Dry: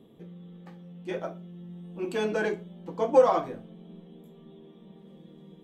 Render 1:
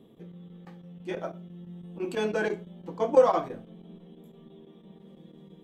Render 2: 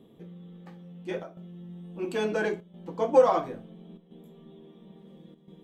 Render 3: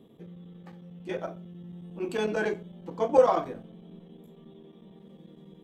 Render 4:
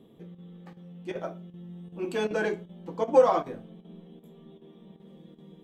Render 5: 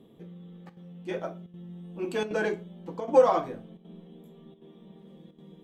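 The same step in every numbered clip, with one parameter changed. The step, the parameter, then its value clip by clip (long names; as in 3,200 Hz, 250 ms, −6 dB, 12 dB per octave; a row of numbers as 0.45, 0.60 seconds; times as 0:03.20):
square-wave tremolo, speed: 6, 0.73, 11, 2.6, 1.3 Hertz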